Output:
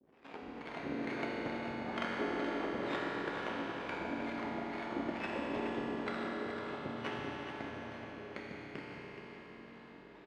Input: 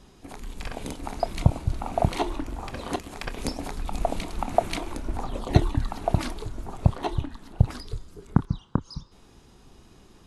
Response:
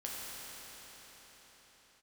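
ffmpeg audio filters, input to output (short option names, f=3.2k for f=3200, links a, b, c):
-filter_complex "[0:a]dynaudnorm=f=130:g=3:m=6dB,alimiter=limit=-13dB:level=0:latency=1:release=464,acrusher=samples=16:mix=1:aa=0.000001:lfo=1:lforange=9.6:lforate=0.28,aeval=exprs='max(val(0),0)':c=same,acrossover=split=460[a][b];[a]aeval=exprs='val(0)*(1-1/2+1/2*cos(2*PI*2.2*n/s))':c=same[c];[b]aeval=exprs='val(0)*(1-1/2-1/2*cos(2*PI*2.2*n/s))':c=same[d];[c][d]amix=inputs=2:normalize=0,aeval=exprs='abs(val(0))':c=same,highpass=310,lowpass=2k,aecho=1:1:424:0.335[e];[1:a]atrim=start_sample=2205,asetrate=48510,aresample=44100[f];[e][f]afir=irnorm=-1:irlink=0,volume=6.5dB"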